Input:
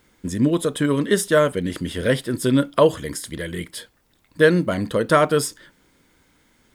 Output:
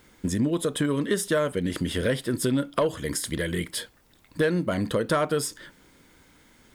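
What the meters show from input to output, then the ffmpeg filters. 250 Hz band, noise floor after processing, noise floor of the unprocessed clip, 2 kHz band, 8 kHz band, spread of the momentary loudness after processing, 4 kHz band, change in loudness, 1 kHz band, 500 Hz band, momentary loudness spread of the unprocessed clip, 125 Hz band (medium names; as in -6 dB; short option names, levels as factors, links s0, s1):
-5.0 dB, -59 dBFS, -62 dBFS, -6.5 dB, -2.0 dB, 7 LU, -3.5 dB, -6.0 dB, -7.5 dB, -7.0 dB, 13 LU, -4.5 dB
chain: -af "asoftclip=type=tanh:threshold=0.501,acompressor=threshold=0.0447:ratio=3,volume=1.41"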